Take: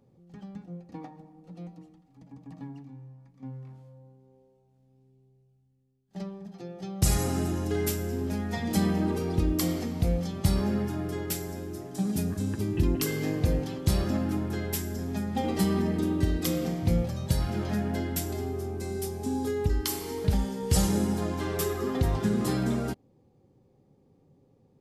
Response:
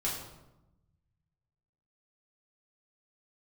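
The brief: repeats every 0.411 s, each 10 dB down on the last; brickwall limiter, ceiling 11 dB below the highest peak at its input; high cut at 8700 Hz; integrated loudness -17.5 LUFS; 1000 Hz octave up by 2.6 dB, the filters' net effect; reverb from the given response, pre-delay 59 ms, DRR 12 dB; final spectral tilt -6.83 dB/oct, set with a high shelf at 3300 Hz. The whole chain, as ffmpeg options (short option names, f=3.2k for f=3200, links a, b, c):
-filter_complex "[0:a]lowpass=8.7k,equalizer=f=1k:t=o:g=4,highshelf=f=3.3k:g=-5.5,alimiter=limit=-22.5dB:level=0:latency=1,aecho=1:1:411|822|1233|1644:0.316|0.101|0.0324|0.0104,asplit=2[a][b];[1:a]atrim=start_sample=2205,adelay=59[c];[b][c]afir=irnorm=-1:irlink=0,volume=-17dB[d];[a][d]amix=inputs=2:normalize=0,volume=14.5dB"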